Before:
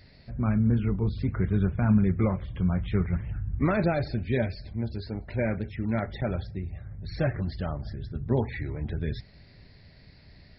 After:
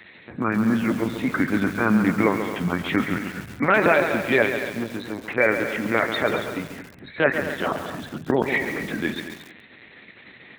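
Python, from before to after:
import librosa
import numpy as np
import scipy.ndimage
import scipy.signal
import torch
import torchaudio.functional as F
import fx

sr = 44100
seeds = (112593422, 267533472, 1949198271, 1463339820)

p1 = fx.peak_eq(x, sr, hz=1800.0, db=6.5, octaves=1.5)
p2 = fx.lpc_vocoder(p1, sr, seeds[0], excitation='pitch_kept', order=8)
p3 = scipy.signal.sosfilt(scipy.signal.butter(2, 240.0, 'highpass', fs=sr, output='sos'), p2)
p4 = fx.high_shelf(p3, sr, hz=2400.0, db=7.0)
p5 = p4 + fx.echo_feedback(p4, sr, ms=225, feedback_pct=23, wet_db=-12.5, dry=0)
p6 = fx.echo_crushed(p5, sr, ms=137, feedback_pct=55, bits=7, wet_db=-8)
y = F.gain(torch.from_numpy(p6), 7.0).numpy()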